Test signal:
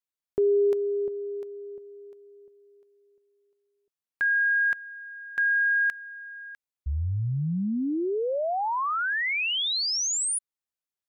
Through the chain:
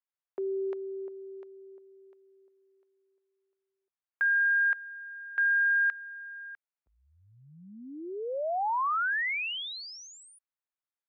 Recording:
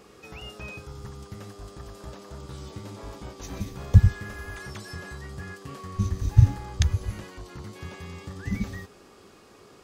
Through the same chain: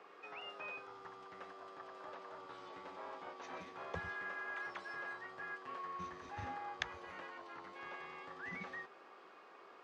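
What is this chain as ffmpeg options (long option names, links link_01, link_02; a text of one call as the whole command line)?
ffmpeg -i in.wav -af "afreqshift=-18,highpass=680,lowpass=2000" out.wav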